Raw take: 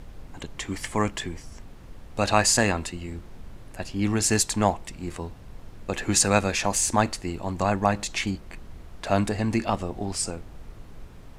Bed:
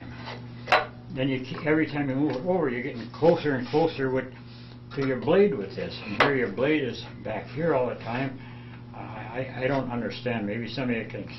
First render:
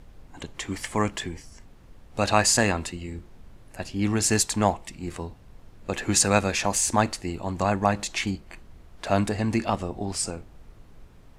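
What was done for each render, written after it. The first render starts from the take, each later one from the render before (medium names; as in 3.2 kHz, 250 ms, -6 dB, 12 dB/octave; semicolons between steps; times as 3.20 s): noise print and reduce 6 dB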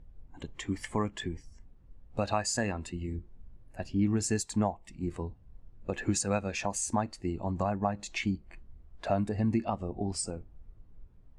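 compression 3:1, threshold -29 dBFS, peak gain reduction 11.5 dB; spectral contrast expander 1.5:1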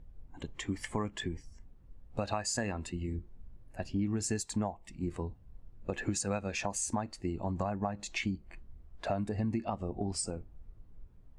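compression 3:1, threshold -30 dBFS, peak gain reduction 6 dB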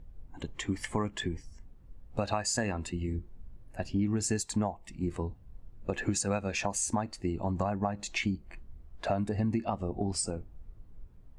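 trim +3 dB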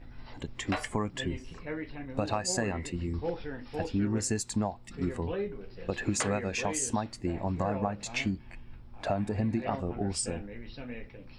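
add bed -14 dB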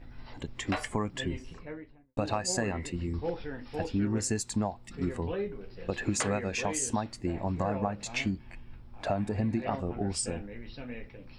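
1.38–2.17 s: studio fade out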